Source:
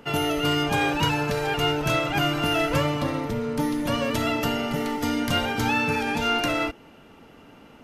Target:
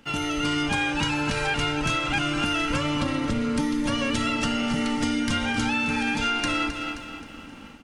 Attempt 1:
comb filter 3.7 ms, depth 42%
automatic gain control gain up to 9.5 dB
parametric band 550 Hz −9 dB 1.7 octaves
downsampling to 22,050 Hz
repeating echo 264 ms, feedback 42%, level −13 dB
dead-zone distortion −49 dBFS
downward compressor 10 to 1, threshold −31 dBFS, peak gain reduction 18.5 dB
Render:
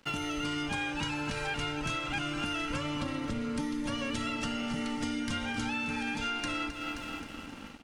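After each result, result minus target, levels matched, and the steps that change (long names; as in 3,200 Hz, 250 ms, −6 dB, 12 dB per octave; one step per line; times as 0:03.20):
downward compressor: peak gain reduction +8.5 dB; dead-zone distortion: distortion +9 dB
change: downward compressor 10 to 1, threshold −21.5 dBFS, peak gain reduction 10 dB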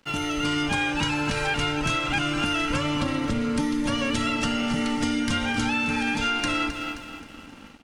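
dead-zone distortion: distortion +9 dB
change: dead-zone distortion −58 dBFS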